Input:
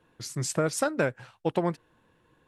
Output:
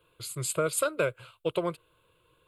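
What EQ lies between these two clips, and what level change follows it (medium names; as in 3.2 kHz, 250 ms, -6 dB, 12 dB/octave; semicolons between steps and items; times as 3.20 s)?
treble shelf 2.7 kHz +9.5 dB; static phaser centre 1.2 kHz, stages 8; 0.0 dB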